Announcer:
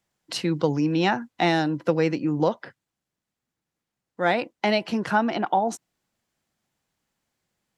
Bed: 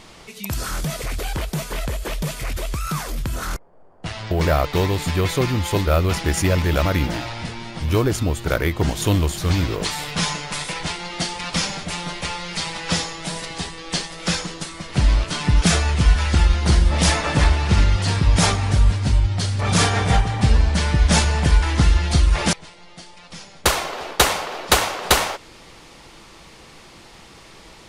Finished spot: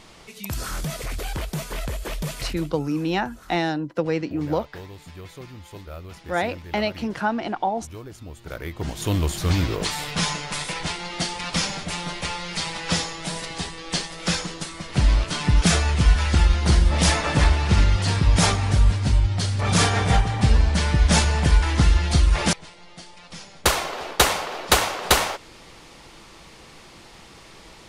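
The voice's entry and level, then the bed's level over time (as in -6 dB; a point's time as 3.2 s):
2.10 s, -2.0 dB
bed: 2.45 s -3.5 dB
2.78 s -20 dB
8.14 s -20 dB
9.32 s -1.5 dB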